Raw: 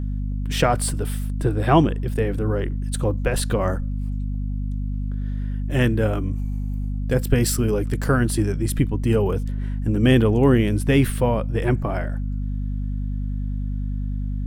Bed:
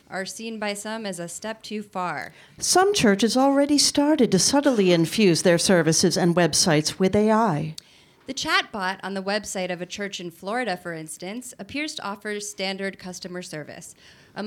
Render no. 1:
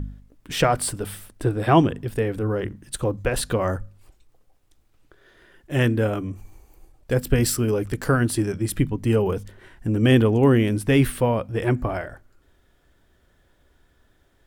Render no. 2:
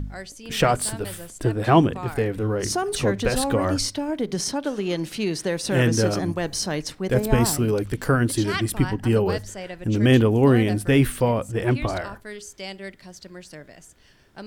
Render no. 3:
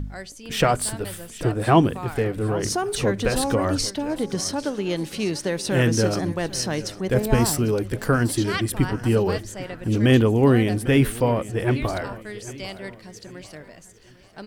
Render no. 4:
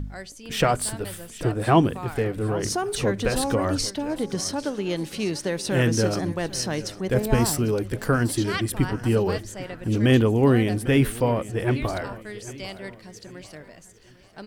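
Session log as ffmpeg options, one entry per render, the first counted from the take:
-af "bandreject=f=50:t=h:w=4,bandreject=f=100:t=h:w=4,bandreject=f=150:t=h:w=4,bandreject=f=200:t=h:w=4,bandreject=f=250:t=h:w=4"
-filter_complex "[1:a]volume=0.422[s0];[0:a][s0]amix=inputs=2:normalize=0"
-af "aecho=1:1:798|1596|2394:0.141|0.0565|0.0226"
-af "volume=0.841"

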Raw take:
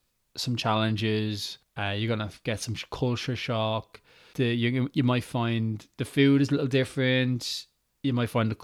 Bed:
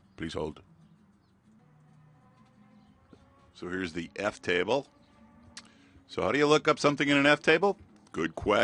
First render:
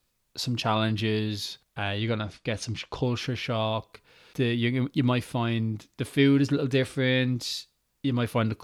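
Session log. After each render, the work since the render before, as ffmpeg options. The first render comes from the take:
-filter_complex "[0:a]asettb=1/sr,asplit=3[s0][s1][s2];[s0]atrim=end=1.984[s3];[s1]atrim=start=1.98:end=3.03,asetpts=PTS-STARTPTS,afade=t=in:d=0.004:c=qsin,afade=t=out:st=1.046:d=0.004:c=qsin,lowpass=7800[s4];[s2]atrim=start=3.026[s5];[s3][s4]acrossfade=d=0.004:c1=hsin:c2=qsin[s6];[s6][s5]acrossfade=d=0.004:c1=qsin:c2=hsin"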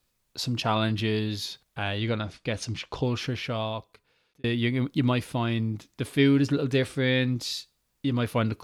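-filter_complex "[0:a]asplit=2[s0][s1];[s0]atrim=end=4.44,asetpts=PTS-STARTPTS,afade=t=out:st=3.32:d=1.12[s2];[s1]atrim=start=4.44,asetpts=PTS-STARTPTS,afade=t=in:d=0.004:c=hsin[s3];[s2][s3]concat=n=2:v=0:a=1"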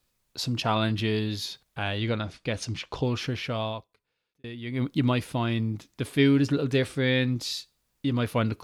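-filter_complex "[0:a]asplit=3[s0][s1][s2];[s0]atrim=end=3.88,asetpts=PTS-STARTPTS,afade=t=out:st=3.7:d=0.18:silence=0.251189[s3];[s1]atrim=start=3.88:end=4.65,asetpts=PTS-STARTPTS,volume=0.251[s4];[s2]atrim=start=4.65,asetpts=PTS-STARTPTS,afade=t=in:d=0.18:silence=0.251189[s5];[s3][s4][s5]concat=n=3:v=0:a=1"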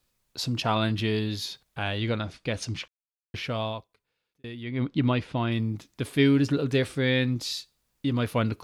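-filter_complex "[0:a]asettb=1/sr,asplit=3[s0][s1][s2];[s0]atrim=end=4.634[s3];[s1]atrim=start=4.63:end=5.52,asetpts=PTS-STARTPTS,afade=t=in:d=0.004:c=qsin,afade=t=out:st=0.886:d=0.004:c=qsin,lowpass=4000[s4];[s2]atrim=start=5.516[s5];[s3][s4]acrossfade=d=0.004:c1=hsin:c2=qsin[s6];[s6][s5]acrossfade=d=0.004:c1=qsin:c2=hsin,asplit=3[s7][s8][s9];[s7]atrim=end=2.88,asetpts=PTS-STARTPTS,afade=t=out:st=2.876:d=0.004:c=hsin[s10];[s8]atrim=start=2.88:end=3.34,asetpts=PTS-STARTPTS,volume=0[s11];[s9]atrim=start=3.34,asetpts=PTS-STARTPTS,afade=t=in:d=0.004:c=hsin[s12];[s10][s11][s12]concat=n=3:v=0:a=1"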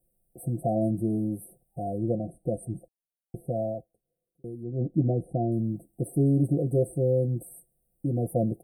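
-af "afftfilt=real='re*(1-between(b*sr/4096,790,8000))':imag='im*(1-between(b*sr/4096,790,8000))':win_size=4096:overlap=0.75,aecho=1:1:5.8:0.72"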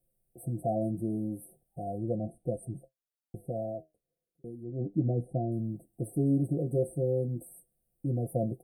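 -af "flanger=delay=7.4:depth=5.9:regen=66:speed=0.36:shape=sinusoidal"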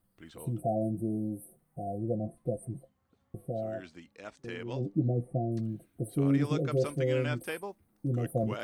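-filter_complex "[1:a]volume=0.188[s0];[0:a][s0]amix=inputs=2:normalize=0"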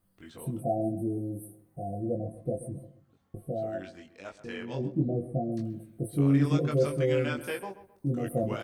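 -filter_complex "[0:a]asplit=2[s0][s1];[s1]adelay=21,volume=0.708[s2];[s0][s2]amix=inputs=2:normalize=0,asplit=2[s3][s4];[s4]adelay=131,lowpass=f=2200:p=1,volume=0.211,asplit=2[s5][s6];[s6]adelay=131,lowpass=f=2200:p=1,volume=0.33,asplit=2[s7][s8];[s8]adelay=131,lowpass=f=2200:p=1,volume=0.33[s9];[s3][s5][s7][s9]amix=inputs=4:normalize=0"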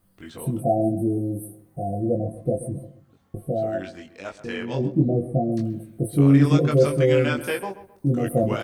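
-af "volume=2.51"

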